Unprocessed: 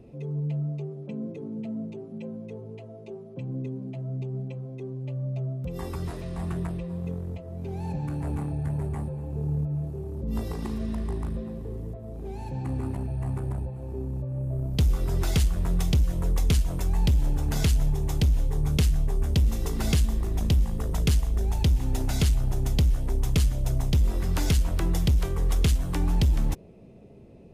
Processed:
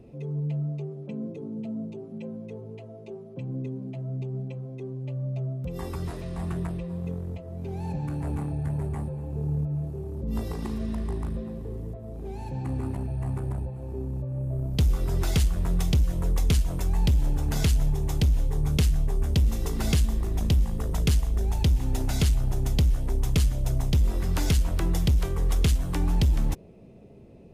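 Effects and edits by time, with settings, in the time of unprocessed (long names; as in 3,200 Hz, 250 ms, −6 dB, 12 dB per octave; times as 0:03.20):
0:01.28–0:02.03: parametric band 1,900 Hz −5 dB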